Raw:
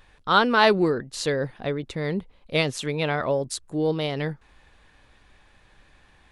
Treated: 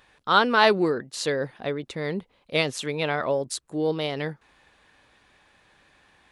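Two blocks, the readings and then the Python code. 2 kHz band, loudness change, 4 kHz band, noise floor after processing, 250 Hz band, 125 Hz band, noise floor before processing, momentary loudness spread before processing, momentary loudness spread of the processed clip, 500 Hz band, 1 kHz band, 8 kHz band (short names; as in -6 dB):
0.0 dB, -0.5 dB, 0.0 dB, -64 dBFS, -2.5 dB, -4.5 dB, -58 dBFS, 12 LU, 12 LU, -1.0 dB, 0.0 dB, 0.0 dB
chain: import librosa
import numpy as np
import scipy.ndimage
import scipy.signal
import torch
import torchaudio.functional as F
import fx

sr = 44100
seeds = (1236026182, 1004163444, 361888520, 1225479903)

y = fx.highpass(x, sr, hz=210.0, slope=6)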